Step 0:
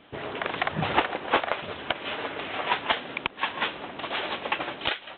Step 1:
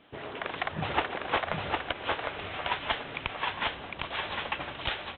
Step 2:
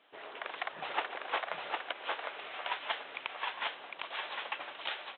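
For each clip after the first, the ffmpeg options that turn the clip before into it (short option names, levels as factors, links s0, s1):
-af "asubboost=boost=6.5:cutoff=110,aecho=1:1:756:0.708,volume=0.562"
-af "highpass=520,volume=0.562"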